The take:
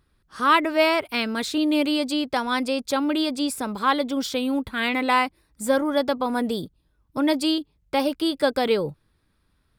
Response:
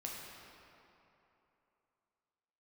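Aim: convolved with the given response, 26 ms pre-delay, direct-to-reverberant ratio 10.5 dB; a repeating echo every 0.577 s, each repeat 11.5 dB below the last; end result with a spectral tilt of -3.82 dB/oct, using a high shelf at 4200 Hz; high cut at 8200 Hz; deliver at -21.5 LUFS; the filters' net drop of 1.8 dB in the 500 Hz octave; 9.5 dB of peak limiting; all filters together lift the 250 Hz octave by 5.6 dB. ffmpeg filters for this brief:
-filter_complex "[0:a]lowpass=8.2k,equalizer=f=250:t=o:g=8,equalizer=f=500:t=o:g=-4,highshelf=f=4.2k:g=-7.5,alimiter=limit=-16.5dB:level=0:latency=1,aecho=1:1:577|1154|1731:0.266|0.0718|0.0194,asplit=2[a][b];[1:a]atrim=start_sample=2205,adelay=26[c];[b][c]afir=irnorm=-1:irlink=0,volume=-10dB[d];[a][d]amix=inputs=2:normalize=0,volume=2.5dB"

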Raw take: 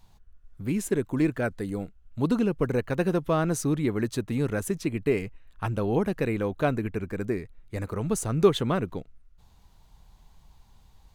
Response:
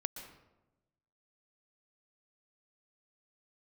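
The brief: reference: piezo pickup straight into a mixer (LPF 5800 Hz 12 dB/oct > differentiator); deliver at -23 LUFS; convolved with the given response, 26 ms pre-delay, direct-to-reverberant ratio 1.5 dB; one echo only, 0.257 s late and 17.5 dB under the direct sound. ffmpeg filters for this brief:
-filter_complex "[0:a]aecho=1:1:257:0.133,asplit=2[a][b];[1:a]atrim=start_sample=2205,adelay=26[c];[b][c]afir=irnorm=-1:irlink=0,volume=-1.5dB[d];[a][d]amix=inputs=2:normalize=0,lowpass=5.8k,aderivative,volume=22dB"

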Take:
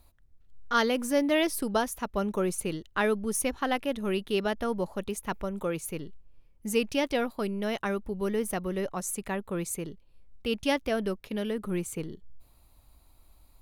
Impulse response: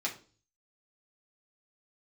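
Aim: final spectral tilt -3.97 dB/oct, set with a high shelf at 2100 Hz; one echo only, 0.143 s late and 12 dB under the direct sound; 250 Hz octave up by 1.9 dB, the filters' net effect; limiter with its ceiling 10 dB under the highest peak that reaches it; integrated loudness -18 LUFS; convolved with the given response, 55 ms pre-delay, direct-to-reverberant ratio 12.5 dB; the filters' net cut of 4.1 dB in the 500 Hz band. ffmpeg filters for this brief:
-filter_complex "[0:a]equalizer=f=250:t=o:g=4,equalizer=f=500:t=o:g=-7,highshelf=f=2.1k:g=7.5,alimiter=limit=-19dB:level=0:latency=1,aecho=1:1:143:0.251,asplit=2[a][b];[1:a]atrim=start_sample=2205,adelay=55[c];[b][c]afir=irnorm=-1:irlink=0,volume=-17dB[d];[a][d]amix=inputs=2:normalize=0,volume=12.5dB"

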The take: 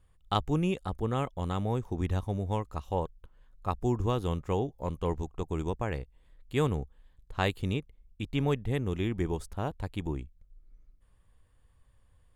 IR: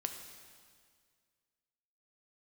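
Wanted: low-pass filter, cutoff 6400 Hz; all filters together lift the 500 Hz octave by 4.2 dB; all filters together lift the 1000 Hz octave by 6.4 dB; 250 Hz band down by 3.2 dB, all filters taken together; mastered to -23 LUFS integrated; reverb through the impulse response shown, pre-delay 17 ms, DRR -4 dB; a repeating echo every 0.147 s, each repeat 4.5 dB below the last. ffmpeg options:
-filter_complex "[0:a]lowpass=6.4k,equalizer=f=250:t=o:g=-7.5,equalizer=f=500:t=o:g=6,equalizer=f=1k:t=o:g=6.5,aecho=1:1:147|294|441|588|735|882|1029|1176|1323:0.596|0.357|0.214|0.129|0.0772|0.0463|0.0278|0.0167|0.01,asplit=2[a][b];[1:a]atrim=start_sample=2205,adelay=17[c];[b][c]afir=irnorm=-1:irlink=0,volume=4dB[d];[a][d]amix=inputs=2:normalize=0,volume=1dB"

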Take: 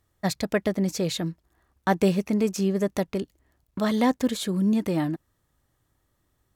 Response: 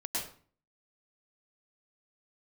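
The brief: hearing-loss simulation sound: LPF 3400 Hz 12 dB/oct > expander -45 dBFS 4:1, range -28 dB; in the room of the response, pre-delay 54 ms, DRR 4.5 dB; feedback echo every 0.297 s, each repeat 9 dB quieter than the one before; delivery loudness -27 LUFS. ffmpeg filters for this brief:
-filter_complex "[0:a]aecho=1:1:297|594|891|1188:0.355|0.124|0.0435|0.0152,asplit=2[a][b];[1:a]atrim=start_sample=2205,adelay=54[c];[b][c]afir=irnorm=-1:irlink=0,volume=-8.5dB[d];[a][d]amix=inputs=2:normalize=0,lowpass=3.4k,agate=range=-28dB:threshold=-45dB:ratio=4,volume=-2.5dB"

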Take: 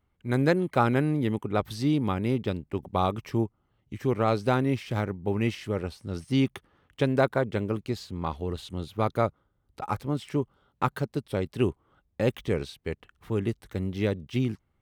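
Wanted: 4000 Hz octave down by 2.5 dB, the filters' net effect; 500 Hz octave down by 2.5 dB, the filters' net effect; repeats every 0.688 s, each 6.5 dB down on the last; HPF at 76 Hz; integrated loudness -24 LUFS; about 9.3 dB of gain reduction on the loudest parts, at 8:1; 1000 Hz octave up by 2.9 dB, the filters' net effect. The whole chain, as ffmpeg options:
-af "highpass=76,equalizer=f=500:t=o:g=-4.5,equalizer=f=1k:t=o:g=5.5,equalizer=f=4k:t=o:g=-3.5,acompressor=threshold=-26dB:ratio=8,aecho=1:1:688|1376|2064|2752|3440|4128:0.473|0.222|0.105|0.0491|0.0231|0.0109,volume=9.5dB"

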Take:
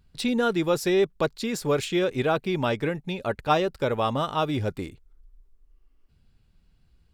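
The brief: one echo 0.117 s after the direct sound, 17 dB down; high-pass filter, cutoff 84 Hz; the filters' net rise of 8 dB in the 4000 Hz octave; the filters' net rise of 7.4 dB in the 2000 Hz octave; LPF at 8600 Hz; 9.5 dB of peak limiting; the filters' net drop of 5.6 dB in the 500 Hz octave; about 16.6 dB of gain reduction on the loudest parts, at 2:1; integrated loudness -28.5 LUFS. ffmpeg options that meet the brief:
-af "highpass=84,lowpass=8.6k,equalizer=f=500:t=o:g=-8,equalizer=f=2k:t=o:g=8.5,equalizer=f=4k:t=o:g=7,acompressor=threshold=-47dB:ratio=2,alimiter=level_in=6.5dB:limit=-24dB:level=0:latency=1,volume=-6.5dB,aecho=1:1:117:0.141,volume=12.5dB"

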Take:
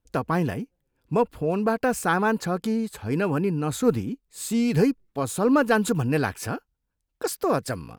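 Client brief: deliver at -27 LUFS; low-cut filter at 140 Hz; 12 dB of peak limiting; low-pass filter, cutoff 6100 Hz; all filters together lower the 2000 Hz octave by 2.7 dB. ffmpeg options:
-af "highpass=140,lowpass=6.1k,equalizer=f=2k:t=o:g=-4,volume=3.5dB,alimiter=limit=-16.5dB:level=0:latency=1"

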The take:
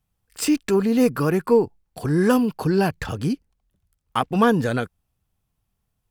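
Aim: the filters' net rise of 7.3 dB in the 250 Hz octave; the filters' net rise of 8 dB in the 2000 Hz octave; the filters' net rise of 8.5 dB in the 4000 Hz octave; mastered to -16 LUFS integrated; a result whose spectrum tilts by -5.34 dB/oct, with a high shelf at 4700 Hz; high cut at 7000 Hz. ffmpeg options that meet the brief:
-af "lowpass=7k,equalizer=f=250:t=o:g=8.5,equalizer=f=2k:t=o:g=9,equalizer=f=4k:t=o:g=5,highshelf=f=4.7k:g=7,volume=-0.5dB"

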